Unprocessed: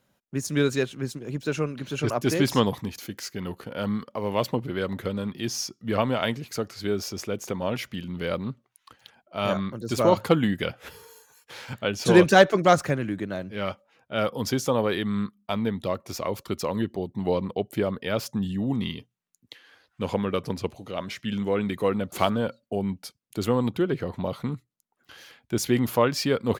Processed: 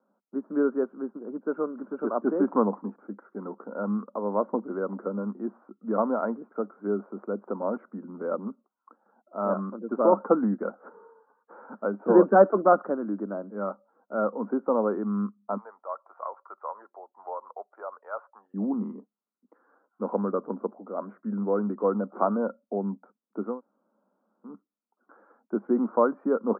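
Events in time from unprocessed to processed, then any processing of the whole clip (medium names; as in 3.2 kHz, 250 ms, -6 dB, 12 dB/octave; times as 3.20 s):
8.36–9.40 s: distance through air 390 m
15.57–18.54 s: high-pass 740 Hz 24 dB/octave
23.49–24.53 s: room tone, crossfade 0.24 s
whole clip: Chebyshev band-pass 200–1400 Hz, order 5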